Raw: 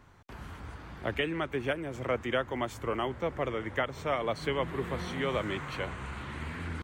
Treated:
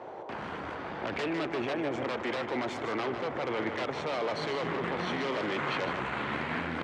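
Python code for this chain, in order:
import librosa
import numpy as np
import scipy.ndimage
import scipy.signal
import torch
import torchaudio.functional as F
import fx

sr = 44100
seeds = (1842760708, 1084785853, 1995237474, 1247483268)

p1 = np.minimum(x, 2.0 * 10.0 ** (-30.0 / 20.0) - x)
p2 = fx.over_compress(p1, sr, threshold_db=-39.0, ratio=-1.0)
p3 = p1 + (p2 * 10.0 ** (0.5 / 20.0))
p4 = fx.dmg_noise_band(p3, sr, seeds[0], low_hz=330.0, high_hz=930.0, level_db=-44.0)
p5 = fx.cheby_harmonics(p4, sr, harmonics=(2,), levels_db=(-7,), full_scale_db=-16.5)
p6 = fx.bandpass_edges(p5, sr, low_hz=210.0, high_hz=3700.0)
y = p6 + 10.0 ** (-8.5 / 20.0) * np.pad(p6, (int(153 * sr / 1000.0), 0))[:len(p6)]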